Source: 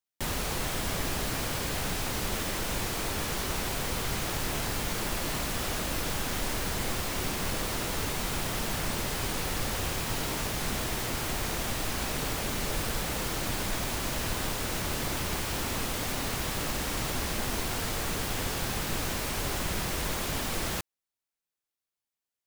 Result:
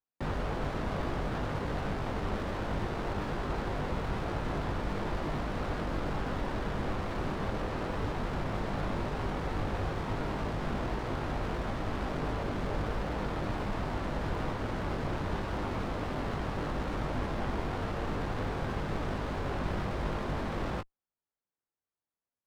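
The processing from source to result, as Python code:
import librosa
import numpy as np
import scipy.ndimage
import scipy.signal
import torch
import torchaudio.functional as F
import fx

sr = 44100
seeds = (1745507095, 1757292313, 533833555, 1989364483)

y = scipy.signal.sosfilt(scipy.signal.butter(2, 1700.0, 'lowpass', fs=sr, output='sos'), x)
y = fx.doubler(y, sr, ms=20.0, db=-6.5)
y = fx.running_max(y, sr, window=9)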